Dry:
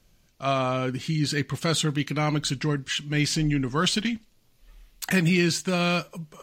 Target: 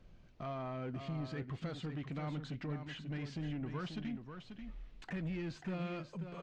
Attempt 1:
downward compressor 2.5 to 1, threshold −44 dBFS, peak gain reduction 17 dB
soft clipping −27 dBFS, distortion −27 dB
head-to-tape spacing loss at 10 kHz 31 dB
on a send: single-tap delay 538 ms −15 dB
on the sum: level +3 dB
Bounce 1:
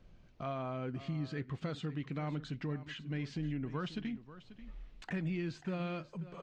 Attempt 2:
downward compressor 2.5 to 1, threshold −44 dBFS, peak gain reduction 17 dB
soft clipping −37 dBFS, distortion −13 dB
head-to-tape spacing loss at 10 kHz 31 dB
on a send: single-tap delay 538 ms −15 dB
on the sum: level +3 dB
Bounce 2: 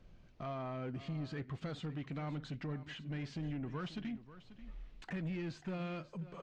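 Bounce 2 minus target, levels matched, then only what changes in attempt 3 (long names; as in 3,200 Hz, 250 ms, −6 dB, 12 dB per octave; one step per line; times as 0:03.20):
echo-to-direct −7 dB
change: single-tap delay 538 ms −8 dB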